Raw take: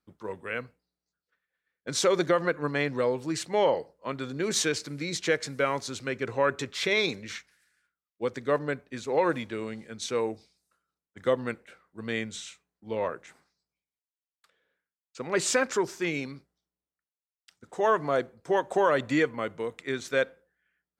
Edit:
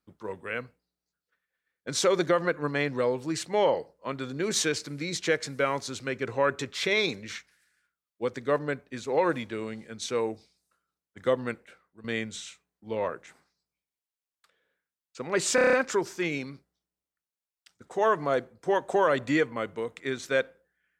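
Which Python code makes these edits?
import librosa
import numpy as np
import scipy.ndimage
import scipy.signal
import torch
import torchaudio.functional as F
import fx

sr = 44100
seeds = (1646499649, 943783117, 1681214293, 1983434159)

y = fx.edit(x, sr, fx.fade_out_to(start_s=11.49, length_s=0.55, curve='qsin', floor_db=-13.5),
    fx.stutter(start_s=15.55, slice_s=0.03, count=7), tone=tone)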